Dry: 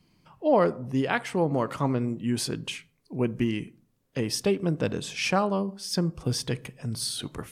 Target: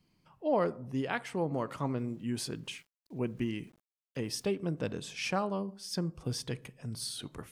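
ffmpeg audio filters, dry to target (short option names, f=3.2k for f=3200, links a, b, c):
-filter_complex "[0:a]asettb=1/sr,asplit=3[a][b][c];[a]atrim=end=1.974[d];[b]atrim=start=1.97:end=4.45,asetpts=PTS-STARTPTS,afade=t=in:d=0.004:c=qsin,afade=t=out:st=2.476:d=0.004:c=qsin,aeval=exprs='val(0)*gte(abs(val(0)),0.002)':c=same[e];[c]atrim=start=4.446[f];[d][e]acrossfade=d=0.004:c1=hsin:c2=qsin[g];[g][f]acrossfade=d=0.004:c1=qsin:c2=hsin,volume=-7.5dB"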